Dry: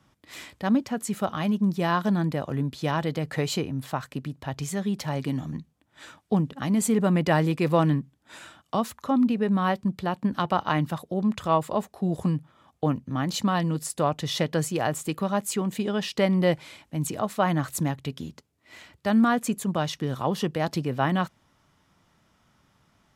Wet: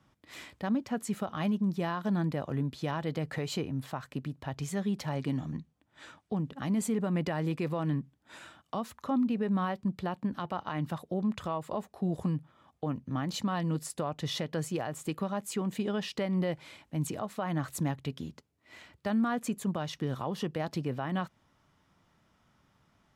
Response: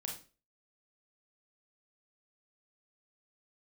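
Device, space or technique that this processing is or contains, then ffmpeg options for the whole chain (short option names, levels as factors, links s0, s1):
stacked limiters: -filter_complex "[0:a]alimiter=limit=0.178:level=0:latency=1:release=202,alimiter=limit=0.119:level=0:latency=1:release=162,highshelf=f=4500:g=-5,asettb=1/sr,asplit=3[s0][s1][s2];[s0]atrim=end=5.164[s3];[s1]atrim=start=5.16:end=6.39,asetpts=PTS-STARTPTS,afade=t=in:d=0.004:c=qsin,afade=t=out:st=1.226:d=0.004:c=qsin,lowpass=11000[s4];[s2]atrim=start=6.386[s5];[s3][s4]acrossfade=d=0.004:c1=hsin:c2=qsin[s6];[s6][s5]acrossfade=d=0.004:c1=qsin:c2=hsin,volume=0.668"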